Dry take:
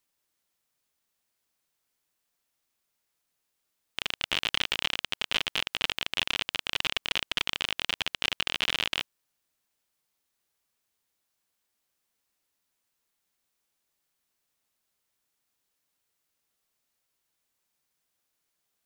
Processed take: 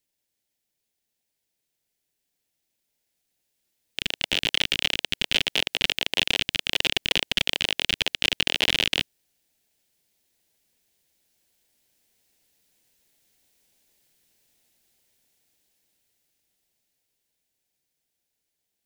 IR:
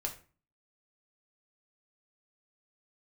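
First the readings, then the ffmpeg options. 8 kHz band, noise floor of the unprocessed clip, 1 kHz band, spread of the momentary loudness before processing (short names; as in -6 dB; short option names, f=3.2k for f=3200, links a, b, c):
+6.5 dB, -80 dBFS, 0.0 dB, 4 LU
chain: -filter_complex "[0:a]acrossover=split=410|1500[a][b][c];[b]acrusher=samples=30:mix=1:aa=0.000001[d];[a][d][c]amix=inputs=3:normalize=0,dynaudnorm=f=230:g=31:m=15dB,volume=-1dB"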